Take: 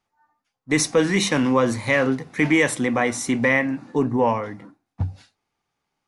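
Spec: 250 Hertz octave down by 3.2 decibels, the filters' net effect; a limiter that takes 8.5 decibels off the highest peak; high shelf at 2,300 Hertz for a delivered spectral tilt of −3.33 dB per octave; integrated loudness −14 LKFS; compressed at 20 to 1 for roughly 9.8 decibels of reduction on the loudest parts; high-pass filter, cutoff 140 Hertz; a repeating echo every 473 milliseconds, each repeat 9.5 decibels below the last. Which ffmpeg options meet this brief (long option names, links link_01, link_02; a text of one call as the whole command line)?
ffmpeg -i in.wav -af "highpass=140,equalizer=frequency=250:width_type=o:gain=-3.5,highshelf=frequency=2300:gain=7,acompressor=threshold=-22dB:ratio=20,alimiter=limit=-18.5dB:level=0:latency=1,aecho=1:1:473|946|1419|1892:0.335|0.111|0.0365|0.012,volume=15dB" out.wav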